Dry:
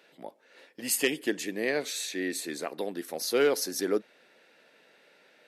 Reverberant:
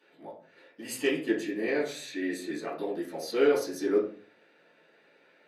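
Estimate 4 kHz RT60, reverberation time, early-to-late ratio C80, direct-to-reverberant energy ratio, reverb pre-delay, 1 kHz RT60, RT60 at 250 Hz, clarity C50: 0.30 s, 0.45 s, 11.0 dB, -10.0 dB, 4 ms, 0.40 s, 0.60 s, 6.0 dB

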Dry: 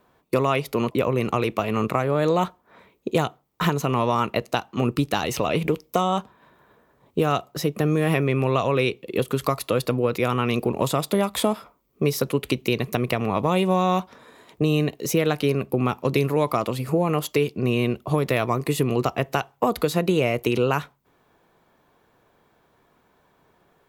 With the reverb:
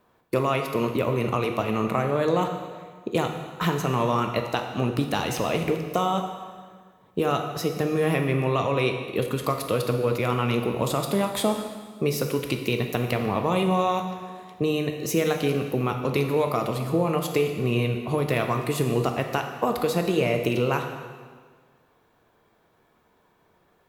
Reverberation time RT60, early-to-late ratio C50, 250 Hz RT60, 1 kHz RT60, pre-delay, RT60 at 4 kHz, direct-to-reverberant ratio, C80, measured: 1.6 s, 6.0 dB, 1.7 s, 1.6 s, 5 ms, 1.5 s, 4.0 dB, 7.5 dB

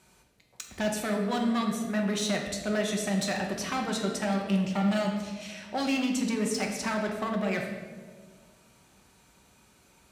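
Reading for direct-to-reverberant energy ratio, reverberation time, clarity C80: 0.5 dB, 1.6 s, 6.5 dB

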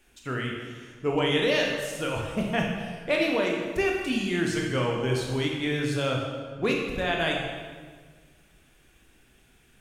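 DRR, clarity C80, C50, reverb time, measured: -1.0 dB, 4.0 dB, 2.0 dB, 1.6 s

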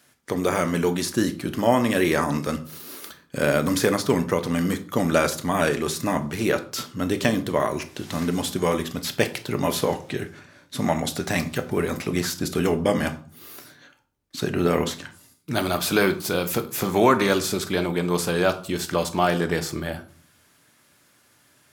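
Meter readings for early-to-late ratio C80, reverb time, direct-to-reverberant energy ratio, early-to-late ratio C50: 19.0 dB, 0.45 s, 7.5 dB, 14.5 dB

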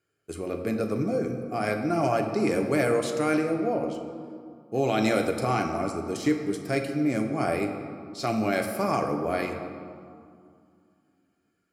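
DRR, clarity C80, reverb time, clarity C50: 3.0 dB, 7.5 dB, 2.3 s, 6.0 dB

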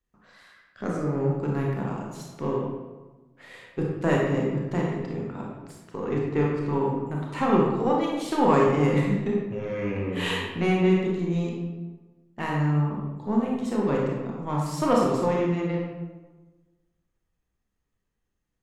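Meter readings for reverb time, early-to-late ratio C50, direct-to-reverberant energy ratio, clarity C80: 1.2 s, 0.0 dB, -2.5 dB, 3.0 dB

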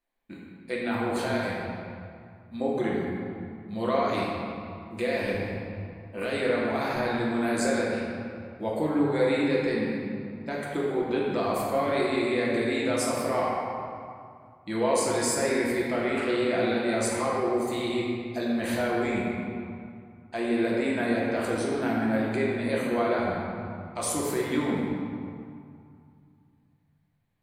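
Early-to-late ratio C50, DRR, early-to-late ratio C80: -1.5 dB, -5.5 dB, 0.5 dB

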